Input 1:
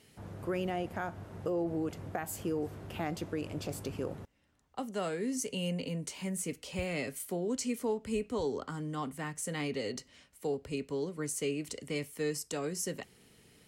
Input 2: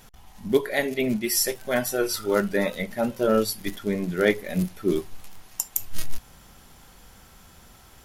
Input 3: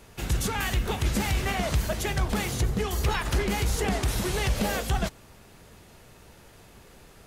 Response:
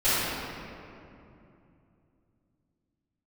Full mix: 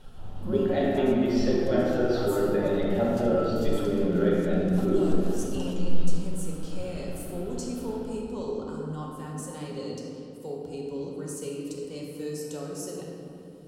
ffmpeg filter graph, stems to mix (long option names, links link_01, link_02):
-filter_complex "[0:a]volume=-5.5dB,asplit=2[link_01][link_02];[link_02]volume=-12.5dB[link_03];[1:a]lowpass=frequency=3500:width=0.5412,lowpass=frequency=3500:width=1.3066,bandreject=frequency=980:width=6.6,acompressor=threshold=-26dB:ratio=6,volume=-3dB,asplit=3[link_04][link_05][link_06];[link_05]volume=-9dB[link_07];[2:a]adelay=650,volume=-15dB[link_08];[link_06]apad=whole_len=348970[link_09];[link_08][link_09]sidechaincompress=threshold=-38dB:ratio=8:attack=16:release=289[link_10];[3:a]atrim=start_sample=2205[link_11];[link_03][link_07]amix=inputs=2:normalize=0[link_12];[link_12][link_11]afir=irnorm=-1:irlink=0[link_13];[link_01][link_04][link_10][link_13]amix=inputs=4:normalize=0,equalizer=frequency=2100:width_type=o:width=0.58:gain=-14.5"